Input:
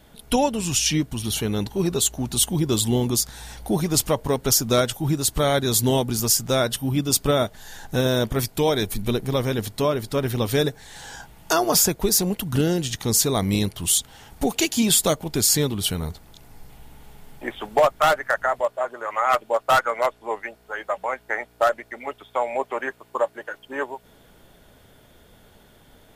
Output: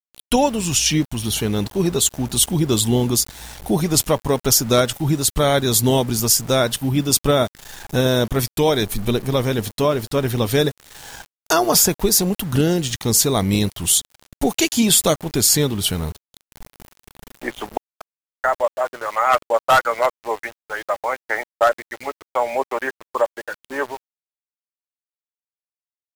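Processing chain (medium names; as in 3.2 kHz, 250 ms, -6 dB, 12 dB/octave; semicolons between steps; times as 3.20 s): 17.77–18.44 s: inverted gate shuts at -18 dBFS, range -36 dB; small samples zeroed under -37 dBFS; trim +3.5 dB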